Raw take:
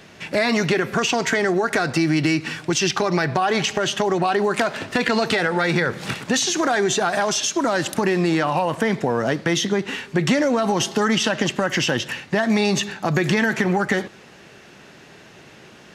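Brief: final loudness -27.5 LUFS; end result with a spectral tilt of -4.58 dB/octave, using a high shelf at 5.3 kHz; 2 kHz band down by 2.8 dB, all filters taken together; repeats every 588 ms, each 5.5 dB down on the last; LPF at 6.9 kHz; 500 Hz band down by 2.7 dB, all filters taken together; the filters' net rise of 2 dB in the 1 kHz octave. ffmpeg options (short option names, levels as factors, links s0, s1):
-af "lowpass=6900,equalizer=f=500:t=o:g=-5,equalizer=f=1000:t=o:g=6,equalizer=f=2000:t=o:g=-5,highshelf=f=5300:g=-3.5,aecho=1:1:588|1176|1764|2352|2940|3528|4116:0.531|0.281|0.149|0.079|0.0419|0.0222|0.0118,volume=0.473"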